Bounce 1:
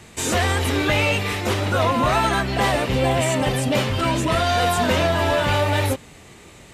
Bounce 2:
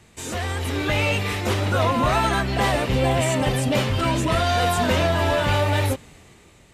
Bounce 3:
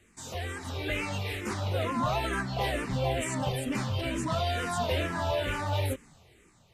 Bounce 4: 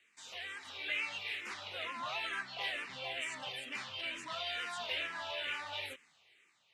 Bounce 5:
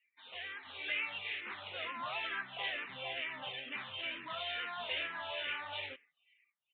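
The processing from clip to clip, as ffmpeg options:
-af "lowshelf=f=110:g=4.5,dynaudnorm=f=180:g=9:m=11.5dB,volume=-9dB"
-filter_complex "[0:a]asplit=2[a][b];[b]afreqshift=-2.2[c];[a][c]amix=inputs=2:normalize=1,volume=-6.5dB"
-af "bandpass=f=2.7k:t=q:w=1.4:csg=0"
-af "afftdn=nr=25:nf=-62,aresample=8000,aresample=44100"

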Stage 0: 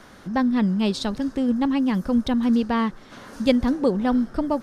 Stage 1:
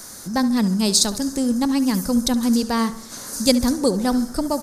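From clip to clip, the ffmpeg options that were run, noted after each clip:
-filter_complex "[0:a]bandreject=f=5.5k:w=22,aexciter=amount=9.4:drive=7.1:freq=4.6k,asplit=2[a][b];[b]adelay=70,lowpass=f=3.7k:p=1,volume=-14dB,asplit=2[c][d];[d]adelay=70,lowpass=f=3.7k:p=1,volume=0.48,asplit=2[e][f];[f]adelay=70,lowpass=f=3.7k:p=1,volume=0.48,asplit=2[g][h];[h]adelay=70,lowpass=f=3.7k:p=1,volume=0.48,asplit=2[i][j];[j]adelay=70,lowpass=f=3.7k:p=1,volume=0.48[k];[a][c][e][g][i][k]amix=inputs=6:normalize=0,volume=1dB"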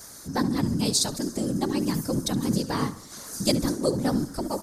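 -af "afftfilt=real='hypot(re,im)*cos(2*PI*random(0))':imag='hypot(re,im)*sin(2*PI*random(1))':win_size=512:overlap=0.75"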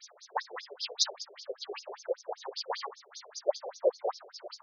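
-af "afftfilt=real='re*between(b*sr/1024,500*pow(4900/500,0.5+0.5*sin(2*PI*5.1*pts/sr))/1.41,500*pow(4900/500,0.5+0.5*sin(2*PI*5.1*pts/sr))*1.41)':imag='im*between(b*sr/1024,500*pow(4900/500,0.5+0.5*sin(2*PI*5.1*pts/sr))/1.41,500*pow(4900/500,0.5+0.5*sin(2*PI*5.1*pts/sr))*1.41)':win_size=1024:overlap=0.75,volume=1dB"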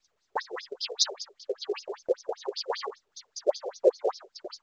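-af "agate=range=-31dB:threshold=-46dB:ratio=16:detection=peak,lowshelf=f=490:t=q:w=1.5:g=7,volume=3dB" -ar 16000 -c:a pcm_mulaw

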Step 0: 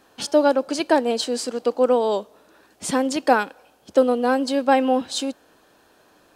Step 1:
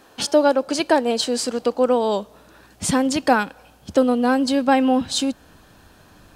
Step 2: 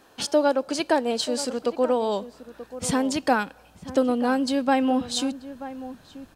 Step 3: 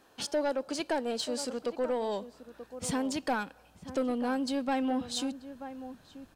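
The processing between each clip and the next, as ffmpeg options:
-filter_complex "[0:a]asubboost=boost=7.5:cutoff=150,asplit=2[a][b];[b]acompressor=threshold=-27dB:ratio=6,volume=-1dB[c];[a][c]amix=inputs=2:normalize=0"
-filter_complex "[0:a]asplit=2[a][b];[b]adelay=932.9,volume=-14dB,highshelf=f=4k:g=-21[c];[a][c]amix=inputs=2:normalize=0,volume=-4.5dB"
-af "asoftclip=type=tanh:threshold=-16dB,volume=-6.5dB"

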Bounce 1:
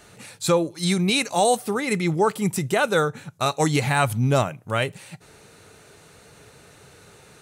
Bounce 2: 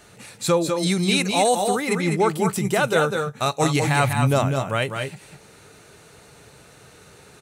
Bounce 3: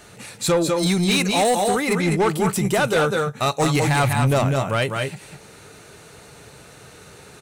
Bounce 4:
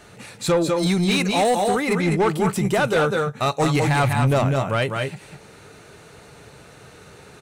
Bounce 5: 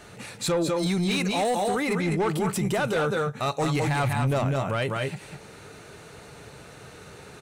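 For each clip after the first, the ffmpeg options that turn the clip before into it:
-af "aecho=1:1:200|215:0.531|0.251"
-af "asoftclip=type=tanh:threshold=-17dB,volume=4dB"
-af "highshelf=f=5k:g=-7"
-af "alimiter=limit=-19.5dB:level=0:latency=1:release=62"

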